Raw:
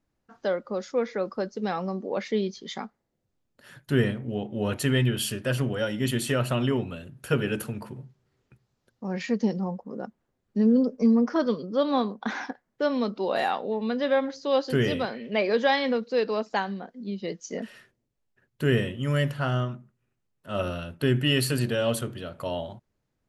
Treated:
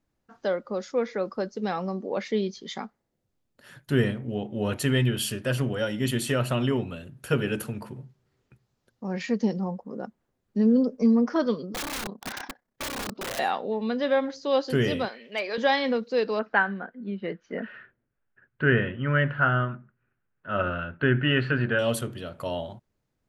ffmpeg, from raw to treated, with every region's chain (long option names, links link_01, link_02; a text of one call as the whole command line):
ffmpeg -i in.wav -filter_complex "[0:a]asettb=1/sr,asplit=3[link_01][link_02][link_03];[link_01]atrim=end=11.724[link_04];[link_02]atrim=start=11.72:end=13.39,asetpts=PTS-STARTPTS,afade=type=in:duration=0.004:curve=qsin,afade=type=out:start_time=1.666:duration=0.004:curve=qsin,tremolo=f=32:d=0.71,aeval=exprs='(mod(23.7*val(0)+1,2)-1)/23.7':channel_layout=same[link_05];[link_03]atrim=start=13.386[link_06];[link_04][link_05]acrossfade=duration=0.004:curve1=hsin:curve2=qsin[link_07];[link_07][link_06]acrossfade=duration=0.004:curve1=qsin:curve2=hsin,asettb=1/sr,asplit=3[link_08][link_09][link_10];[link_08]atrim=end=15.084[link_11];[link_09]atrim=start=15.08:end=15.58,asetpts=PTS-STARTPTS,afade=type=in:duration=0.004:curve=qsin,afade=type=out:start_time=0.496:duration=0.004:curve=qsin,highpass=frequency=1100:poles=1,volume=19.5dB,asoftclip=hard,volume=-19.5dB[link_12];[link_10]atrim=start=15.576[link_13];[link_11][link_12]acrossfade=duration=0.004:curve1=hsin:curve2=qsin[link_14];[link_14][link_13]acrossfade=duration=0.004:curve1=qsin:curve2=hsin,asettb=1/sr,asplit=3[link_15][link_16][link_17];[link_15]atrim=end=16.394[link_18];[link_16]atrim=start=16.39:end=21.79,asetpts=PTS-STARTPTS,afade=type=in:duration=0.004:curve=qsin,afade=type=out:start_time=5.396:duration=0.004:curve=qsin,lowpass=frequency=2800:width=0.5412,lowpass=frequency=2800:width=1.3066,equalizer=frequency=1500:width_type=o:width=0.49:gain=13[link_19];[link_17]atrim=start=21.786[link_20];[link_18][link_19]acrossfade=duration=0.004:curve1=hsin:curve2=qsin[link_21];[link_21][link_20]acrossfade=duration=0.004:curve1=qsin:curve2=hsin" out.wav